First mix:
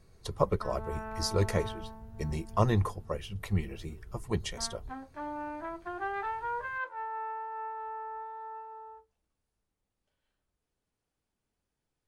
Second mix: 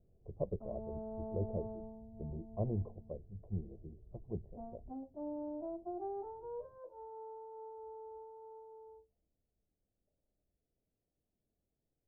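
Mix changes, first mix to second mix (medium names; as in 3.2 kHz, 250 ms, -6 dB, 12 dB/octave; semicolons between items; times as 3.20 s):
speech -9.0 dB; master: add elliptic low-pass 680 Hz, stop band 80 dB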